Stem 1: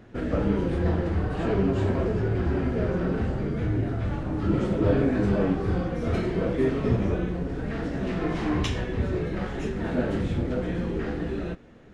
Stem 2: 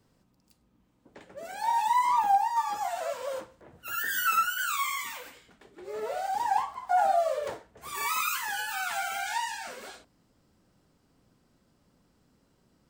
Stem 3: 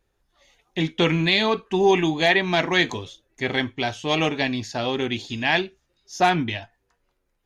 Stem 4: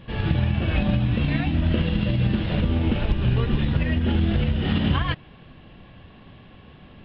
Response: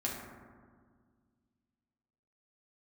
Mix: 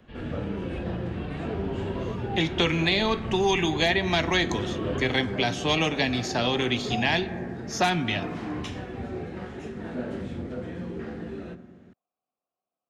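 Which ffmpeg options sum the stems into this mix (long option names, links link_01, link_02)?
-filter_complex "[0:a]highpass=88,volume=-8.5dB,asplit=2[link_01][link_02];[link_02]volume=-11.5dB[link_03];[1:a]asplit=3[link_04][link_05][link_06];[link_04]bandpass=frequency=730:width_type=q:width=8,volume=0dB[link_07];[link_05]bandpass=frequency=1090:width_type=q:width=8,volume=-6dB[link_08];[link_06]bandpass=frequency=2440:width_type=q:width=8,volume=-9dB[link_09];[link_07][link_08][link_09]amix=inputs=3:normalize=0,volume=-8.5dB[link_10];[2:a]adelay=1600,volume=2dB,asplit=2[link_11][link_12];[link_12]volume=-16dB[link_13];[3:a]volume=-14dB[link_14];[4:a]atrim=start_sample=2205[link_15];[link_03][link_13]amix=inputs=2:normalize=0[link_16];[link_16][link_15]afir=irnorm=-1:irlink=0[link_17];[link_01][link_10][link_11][link_14][link_17]amix=inputs=5:normalize=0,acrossover=split=140|400|1100|3500[link_18][link_19][link_20][link_21][link_22];[link_18]acompressor=threshold=-32dB:ratio=4[link_23];[link_19]acompressor=threshold=-31dB:ratio=4[link_24];[link_20]acompressor=threshold=-29dB:ratio=4[link_25];[link_21]acompressor=threshold=-28dB:ratio=4[link_26];[link_22]acompressor=threshold=-30dB:ratio=4[link_27];[link_23][link_24][link_25][link_26][link_27]amix=inputs=5:normalize=0"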